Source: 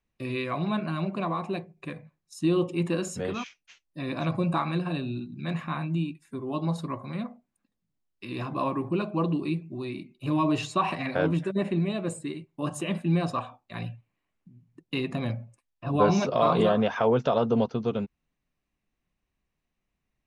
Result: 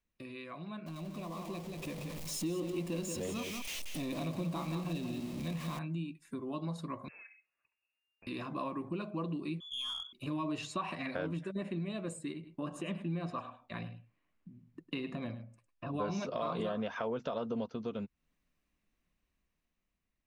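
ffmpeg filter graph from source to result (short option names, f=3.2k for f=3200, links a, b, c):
-filter_complex "[0:a]asettb=1/sr,asplit=3[a][b][c];[a]atrim=end=0.864[d];[b]atrim=start=0.86:end=5.79,asetpts=PTS-STARTPTS,afade=t=in:d=0.004:c=qsin,afade=t=out:st=4.926:d=0.004:c=qsin,aeval=exprs='val(0)+0.5*0.0237*sgn(val(0))':c=same,equalizer=f=1.5k:w=2.2:g=-12,aecho=1:1:182:0.447,atrim=end_sample=217413[e];[c]atrim=start=5.786[f];[d][e]acrossfade=d=0.004:c1=hsin:c2=qsin[g];[g][f]acrossfade=d=0.004:c1=qsin:c2=hsin,asettb=1/sr,asplit=3[h][i][j];[h]atrim=end=7.084[k];[i]atrim=start=7.08:end=8.27,asetpts=PTS-STARTPTS,afade=t=in:d=0.004:c=qsin,afade=t=out:st=1.186:d=0.004:c=qsin,lowshelf=f=420:g=-10.5,acompressor=threshold=-59dB:ratio=2.5:attack=3.2:release=140:knee=1:detection=peak,lowpass=f=2.4k:t=q:w=0.5098,lowpass=f=2.4k:t=q:w=0.6013,lowpass=f=2.4k:t=q:w=0.9,lowpass=f=2.4k:t=q:w=2.563,afreqshift=-2800[l];[j]atrim=start=8.266[m];[k][l]acrossfade=d=0.004:c1=hsin:c2=qsin[n];[n][m]acrossfade=d=0.004:c1=qsin:c2=hsin,asettb=1/sr,asplit=3[o][p][q];[o]atrim=end=9.604[r];[p]atrim=start=9.6:end=10.13,asetpts=PTS-STARTPTS,afade=t=in:d=0.004:c=qsin,afade=t=out:st=0.526:d=0.004:c=qsin,lowpass=f=3.1k:t=q:w=0.5098,lowpass=f=3.1k:t=q:w=0.6013,lowpass=f=3.1k:t=q:w=0.9,lowpass=f=3.1k:t=q:w=2.563,afreqshift=-3600,aeval=exprs='(tanh(28.2*val(0)+0.15)-tanh(0.15))/28.2':c=same[s];[q]atrim=start=10.126[t];[r][s]acrossfade=d=0.004:c1=hsin:c2=qsin[u];[u][t]acrossfade=d=0.004:c1=qsin:c2=hsin,asettb=1/sr,asplit=3[v][w][x];[v]atrim=end=12.334[y];[w]atrim=start=12.33:end=15.94,asetpts=PTS-STARTPTS,afade=t=in:d=0.004:c=qsin,afade=t=out:st=3.606:d=0.004:c=qsin,lowpass=f=3k:p=1,aecho=1:1:103:0.2,atrim=end_sample=159201[z];[x]atrim=start=15.936[aa];[y][z]acrossfade=d=0.004:c1=hsin:c2=qsin[ab];[ab][aa]acrossfade=d=0.004:c1=qsin:c2=hsin,acompressor=threshold=-41dB:ratio=2.5,equalizer=f=125:t=o:w=0.33:g=-9,equalizer=f=400:t=o:w=0.33:g=-3,equalizer=f=800:t=o:w=0.33:g=-5,dynaudnorm=f=640:g=5:m=7dB,volume=-5dB"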